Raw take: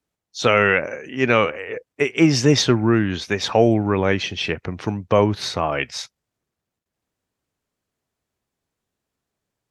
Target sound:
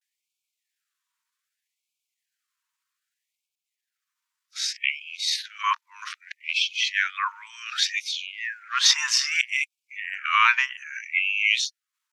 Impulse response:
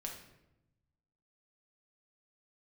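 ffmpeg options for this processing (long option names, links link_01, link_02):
-af "areverse,atempo=0.8,afftfilt=real='re*gte(b*sr/1024,880*pow(2200/880,0.5+0.5*sin(2*PI*0.64*pts/sr)))':imag='im*gte(b*sr/1024,880*pow(2200/880,0.5+0.5*sin(2*PI*0.64*pts/sr)))':win_size=1024:overlap=0.75,volume=2.5dB"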